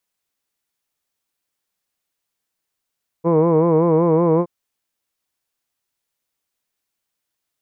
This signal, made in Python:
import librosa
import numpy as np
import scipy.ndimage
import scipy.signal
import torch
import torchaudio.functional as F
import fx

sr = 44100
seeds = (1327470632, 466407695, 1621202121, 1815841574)

y = fx.vowel(sr, seeds[0], length_s=1.22, word='hood', hz=162.0, glide_st=0.5, vibrato_hz=5.3, vibrato_st=0.9)